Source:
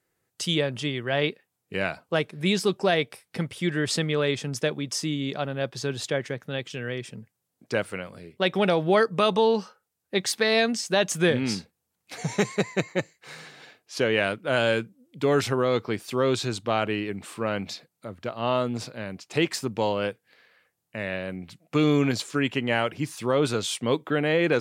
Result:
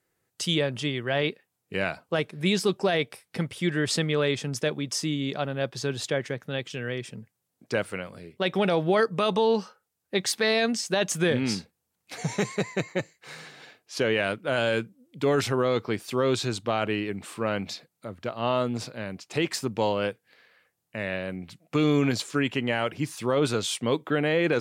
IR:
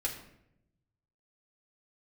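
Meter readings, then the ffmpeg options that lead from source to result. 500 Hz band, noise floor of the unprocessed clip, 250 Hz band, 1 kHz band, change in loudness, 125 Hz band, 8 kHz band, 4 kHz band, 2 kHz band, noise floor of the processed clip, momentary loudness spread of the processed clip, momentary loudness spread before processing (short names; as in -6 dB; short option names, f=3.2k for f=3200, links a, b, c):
-1.0 dB, -80 dBFS, -0.5 dB, -1.5 dB, -1.0 dB, -0.5 dB, 0.0 dB, -1.0 dB, -1.5 dB, -80 dBFS, 11 LU, 13 LU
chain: -af "alimiter=limit=-13dB:level=0:latency=1:release=12"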